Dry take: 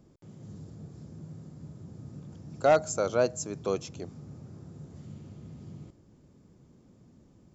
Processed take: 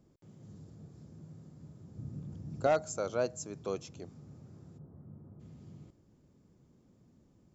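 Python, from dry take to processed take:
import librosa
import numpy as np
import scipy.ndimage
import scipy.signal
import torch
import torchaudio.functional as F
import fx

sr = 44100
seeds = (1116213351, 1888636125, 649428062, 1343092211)

y = fx.low_shelf(x, sr, hz=320.0, db=10.0, at=(1.96, 2.67))
y = fx.lowpass(y, sr, hz=1300.0, slope=24, at=(4.77, 5.39), fade=0.02)
y = y * 10.0 ** (-6.5 / 20.0)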